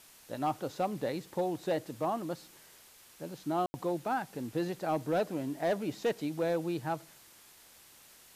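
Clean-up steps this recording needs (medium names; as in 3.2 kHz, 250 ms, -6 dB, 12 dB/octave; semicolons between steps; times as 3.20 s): clip repair -22.5 dBFS; room tone fill 3.66–3.74 s; noise print and reduce 21 dB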